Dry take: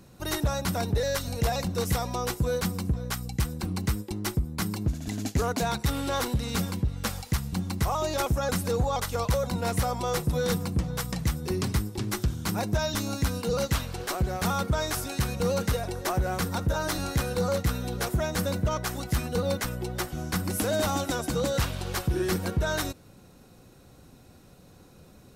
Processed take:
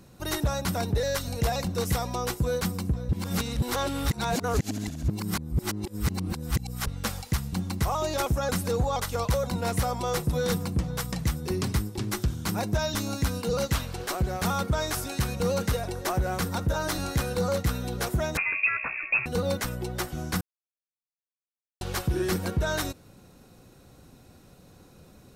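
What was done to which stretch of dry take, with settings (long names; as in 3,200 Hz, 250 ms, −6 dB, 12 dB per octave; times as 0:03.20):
0:03.09–0:06.87: reverse
0:18.37–0:19.26: voice inversion scrambler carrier 2,600 Hz
0:20.41–0:21.81: silence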